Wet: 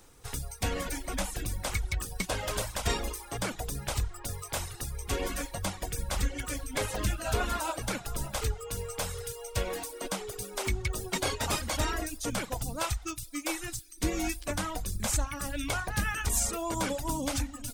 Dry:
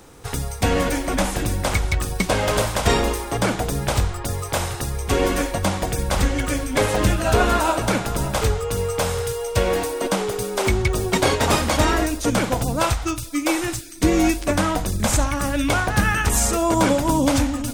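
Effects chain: pre-emphasis filter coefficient 0.97; reverb removal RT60 0.71 s; tilt EQ -4 dB/octave; trim +5 dB

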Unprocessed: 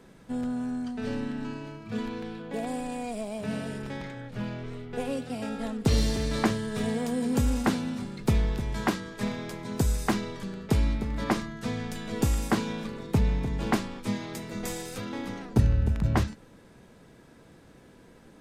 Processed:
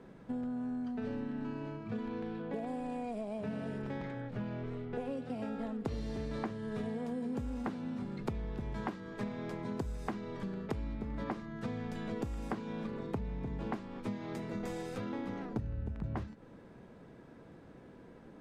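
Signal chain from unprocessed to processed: low-pass 1.2 kHz 6 dB/octave; bass shelf 86 Hz -6.5 dB; compression 6:1, threshold -36 dBFS, peak gain reduction 17.5 dB; trim +1 dB

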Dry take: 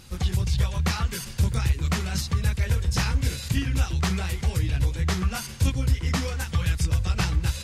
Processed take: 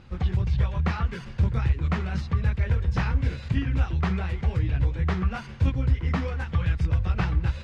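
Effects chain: low-pass 2.1 kHz 12 dB/octave

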